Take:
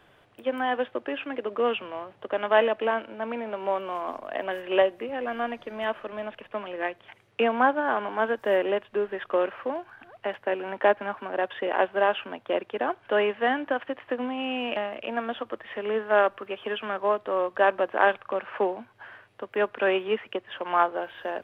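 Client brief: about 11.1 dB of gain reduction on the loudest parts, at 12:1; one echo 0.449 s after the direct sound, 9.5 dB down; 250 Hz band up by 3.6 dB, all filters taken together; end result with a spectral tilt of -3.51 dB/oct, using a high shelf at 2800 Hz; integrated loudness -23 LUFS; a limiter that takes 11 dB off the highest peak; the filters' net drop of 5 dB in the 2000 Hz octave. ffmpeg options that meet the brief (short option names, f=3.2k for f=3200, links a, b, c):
-af "equalizer=f=250:t=o:g=4.5,equalizer=f=2k:t=o:g=-5.5,highshelf=f=2.8k:g=-4,acompressor=threshold=-26dB:ratio=12,alimiter=level_in=1dB:limit=-24dB:level=0:latency=1,volume=-1dB,aecho=1:1:449:0.335,volume=12dB"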